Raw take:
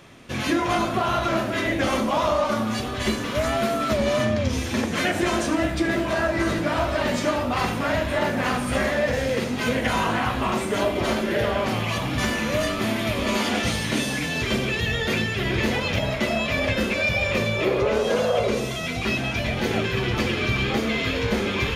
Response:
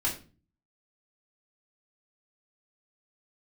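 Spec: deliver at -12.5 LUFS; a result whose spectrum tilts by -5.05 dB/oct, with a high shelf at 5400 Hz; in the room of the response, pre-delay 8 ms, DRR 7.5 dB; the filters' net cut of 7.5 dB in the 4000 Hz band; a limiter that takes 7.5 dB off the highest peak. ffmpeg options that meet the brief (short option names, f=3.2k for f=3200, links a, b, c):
-filter_complex "[0:a]equalizer=f=4k:t=o:g=-8.5,highshelf=f=5.4k:g=-5,alimiter=limit=-17dB:level=0:latency=1,asplit=2[a][b];[1:a]atrim=start_sample=2205,adelay=8[c];[b][c]afir=irnorm=-1:irlink=0,volume=-14.5dB[d];[a][d]amix=inputs=2:normalize=0,volume=13dB"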